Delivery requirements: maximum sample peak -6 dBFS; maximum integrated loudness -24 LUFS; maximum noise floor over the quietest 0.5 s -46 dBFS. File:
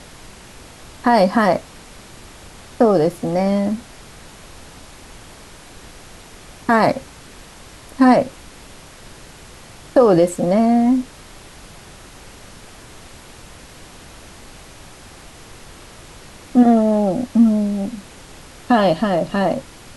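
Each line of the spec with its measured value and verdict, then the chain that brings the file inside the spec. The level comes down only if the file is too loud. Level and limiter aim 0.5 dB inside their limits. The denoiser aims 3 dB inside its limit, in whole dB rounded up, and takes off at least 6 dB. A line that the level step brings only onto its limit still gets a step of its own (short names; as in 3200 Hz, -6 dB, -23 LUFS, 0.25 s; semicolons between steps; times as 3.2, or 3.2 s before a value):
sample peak -3.5 dBFS: fail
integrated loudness -17.0 LUFS: fail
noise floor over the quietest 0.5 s -41 dBFS: fail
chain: gain -7.5 dB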